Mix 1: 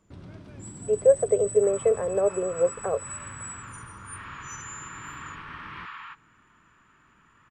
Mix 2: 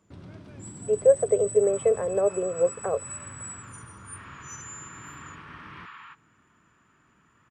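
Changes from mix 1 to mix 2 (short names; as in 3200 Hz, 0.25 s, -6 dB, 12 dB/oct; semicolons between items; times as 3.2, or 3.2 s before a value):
second sound -4.5 dB; master: add HPF 67 Hz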